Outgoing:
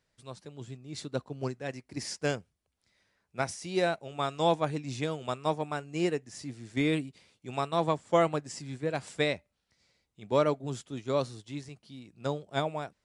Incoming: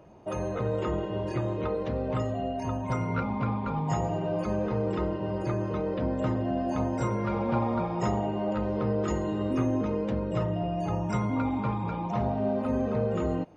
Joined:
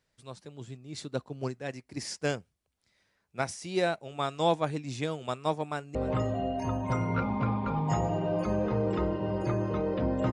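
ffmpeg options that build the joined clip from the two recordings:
-filter_complex "[0:a]apad=whole_dur=10.32,atrim=end=10.32,atrim=end=5.952[a];[1:a]atrim=start=1.948:end=6.32[b];[a][b]acrossfade=d=0.004:c1=hsin:c2=hsin,asplit=2[c][d];[d]afade=t=in:st=5.64:d=0.01,afade=t=out:st=5.95:d=0.01,aecho=0:1:300|600:0.158489|0.0316979[e];[c][e]amix=inputs=2:normalize=0"

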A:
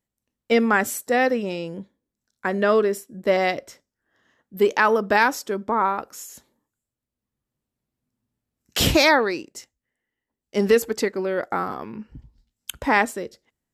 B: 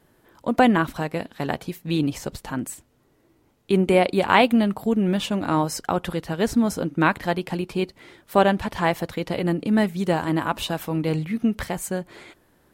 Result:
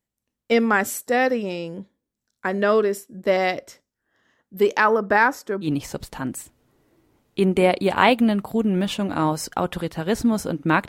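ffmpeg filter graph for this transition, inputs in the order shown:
-filter_complex "[0:a]asettb=1/sr,asplit=3[a][b][c];[a]atrim=end=4.844[d];[b]atrim=start=4.84:end=5.69,asetpts=PTS-STARTPTS,afade=t=in:d=0.004:c=qsin,afade=t=out:st=0.846:d=0.004:c=qsin,highshelf=f=2.3k:t=q:w=1.5:g=-6.5[e];[c]atrim=start=5.686[f];[d][e]acrossfade=d=0.004:c1=hsin:c2=qsin[g];[g][f]acrossfade=d=0.004:c1=qsin:c2=hsin,apad=whole_dur=10.88,atrim=end=10.88,atrim=end=5.69,asetpts=PTS-STARTPTS[h];[1:a]atrim=start=1.93:end=7.2,asetpts=PTS-STARTPTS[i];[h][i]acrossfade=d=0.08:c1=tri:c2=tri"

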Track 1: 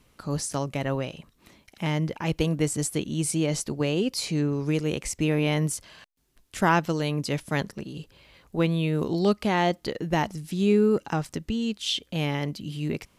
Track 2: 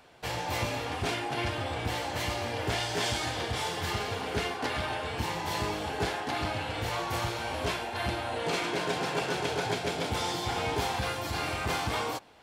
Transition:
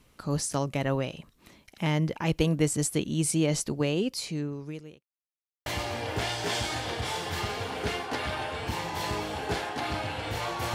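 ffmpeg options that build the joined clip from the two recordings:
-filter_complex "[0:a]apad=whole_dur=10.74,atrim=end=10.74,asplit=2[a][b];[a]atrim=end=5.03,asetpts=PTS-STARTPTS,afade=t=out:st=3.66:d=1.37[c];[b]atrim=start=5.03:end=5.66,asetpts=PTS-STARTPTS,volume=0[d];[1:a]atrim=start=2.17:end=7.25,asetpts=PTS-STARTPTS,afade=t=in:d=0.004:c=hsin[e];[c][d][e]concat=n=3:v=0:a=1"

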